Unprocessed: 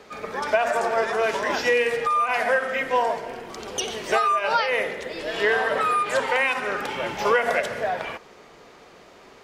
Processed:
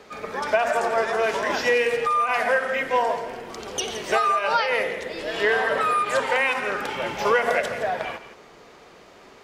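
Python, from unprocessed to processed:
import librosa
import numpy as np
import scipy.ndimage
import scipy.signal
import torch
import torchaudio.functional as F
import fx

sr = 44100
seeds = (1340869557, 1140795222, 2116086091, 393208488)

y = x + fx.echo_single(x, sr, ms=168, db=-12.5, dry=0)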